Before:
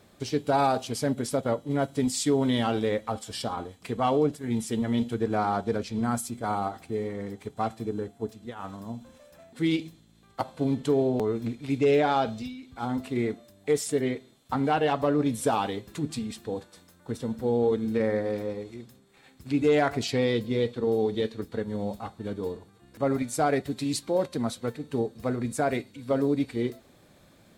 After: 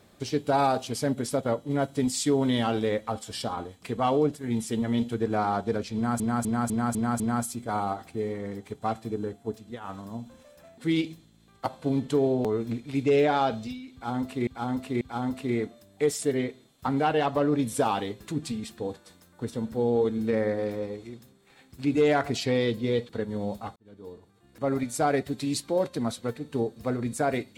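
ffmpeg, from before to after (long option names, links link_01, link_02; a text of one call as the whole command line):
ffmpeg -i in.wav -filter_complex "[0:a]asplit=10[link_01][link_02][link_03][link_04][link_05][link_06][link_07][link_08][link_09][link_10];[link_01]atrim=end=6.202[link_11];[link_02]atrim=start=5.948:end=6.202[link_12];[link_03]atrim=start=5.948:end=6.202[link_13];[link_04]atrim=start=5.948:end=6.202[link_14];[link_05]atrim=start=5.948:end=6.202[link_15];[link_06]atrim=start=5.948:end=13.222[link_16];[link_07]atrim=start=12.678:end=13.222[link_17];[link_08]atrim=start=12.678:end=20.762[link_18];[link_09]atrim=start=21.478:end=22.15,asetpts=PTS-STARTPTS,afade=type=out:start_time=0.668:duration=0.004:curve=hsin[link_19];[link_10]atrim=start=22.15,asetpts=PTS-STARTPTS,afade=type=in:duration=1.08[link_20];[link_11][link_12]acrossfade=duration=0.004:curve1=hsin:curve2=hsin[link_21];[link_21][link_13]acrossfade=duration=0.004:curve1=hsin:curve2=hsin[link_22];[link_22][link_14]acrossfade=duration=0.004:curve1=hsin:curve2=hsin[link_23];[link_23][link_15]acrossfade=duration=0.004:curve1=hsin:curve2=hsin[link_24];[link_24][link_16]acrossfade=duration=0.004:curve1=hsin:curve2=hsin[link_25];[link_25][link_17]acrossfade=duration=0.004:curve1=hsin:curve2=hsin[link_26];[link_26][link_18]acrossfade=duration=0.004:curve1=hsin:curve2=hsin[link_27];[link_19][link_20]concat=n=2:v=0:a=1[link_28];[link_27][link_28]acrossfade=duration=0.004:curve1=hsin:curve2=hsin" out.wav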